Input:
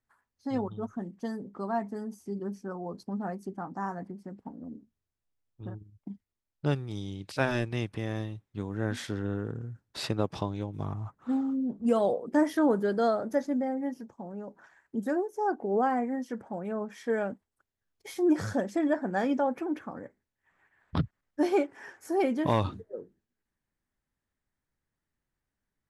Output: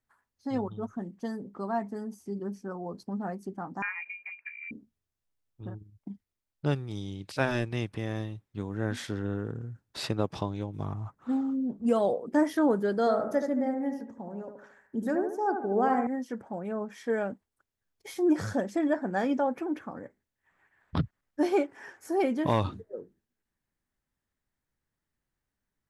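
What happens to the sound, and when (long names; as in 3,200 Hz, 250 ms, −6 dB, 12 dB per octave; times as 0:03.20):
0:03.82–0:04.71: voice inversion scrambler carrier 2,600 Hz
0:12.99–0:16.07: bucket-brigade delay 75 ms, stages 1,024, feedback 43%, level −6.5 dB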